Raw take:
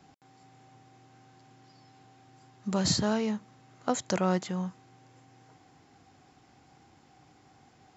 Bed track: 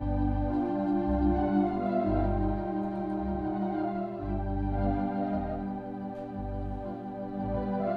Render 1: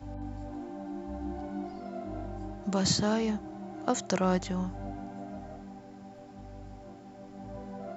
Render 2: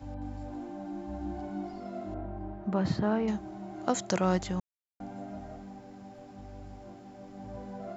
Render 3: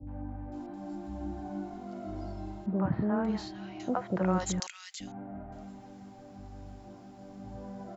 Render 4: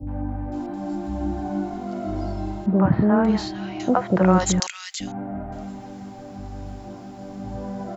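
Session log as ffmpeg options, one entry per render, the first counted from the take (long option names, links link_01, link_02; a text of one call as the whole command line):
ffmpeg -i in.wav -i bed.wav -filter_complex "[1:a]volume=-11dB[link_01];[0:a][link_01]amix=inputs=2:normalize=0" out.wav
ffmpeg -i in.wav -filter_complex "[0:a]asettb=1/sr,asplit=3[link_01][link_02][link_03];[link_01]atrim=end=2.144[link_04];[link_02]atrim=start=2.14:end=3.28,asetpts=PTS-STARTPTS,afade=type=in:duration=0.004:curve=qsin,afade=type=out:start_time=1.136:duration=0.004:curve=qsin,lowpass=1800[link_05];[link_03]atrim=start=3.276[link_06];[link_04][link_05]acrossfade=duration=0.004:curve1=hsin:curve2=qsin[link_07];[link_07][link_06]acrossfade=duration=0.004:curve1=qsin:curve2=hsin,asplit=3[link_08][link_09][link_10];[link_08]atrim=end=4.6,asetpts=PTS-STARTPTS,afade=type=out:start_time=4.596:duration=0.004:curve=hsin[link_11];[link_09]atrim=start=4.6:end=5,asetpts=PTS-STARTPTS,volume=0[link_12];[link_10]atrim=start=5,asetpts=PTS-STARTPTS,afade=type=in:duration=0.004:curve=hsin[link_13];[link_11][link_12][link_13]concat=n=3:v=0:a=1" out.wav
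ffmpeg -i in.wav -filter_complex "[0:a]acrossover=split=540|2100[link_01][link_02][link_03];[link_02]adelay=70[link_04];[link_03]adelay=520[link_05];[link_01][link_04][link_05]amix=inputs=3:normalize=0" out.wav
ffmpeg -i in.wav -af "volume=11.5dB" out.wav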